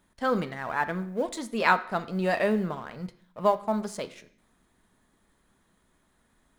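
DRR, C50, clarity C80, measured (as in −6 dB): 10.0 dB, 15.5 dB, 18.5 dB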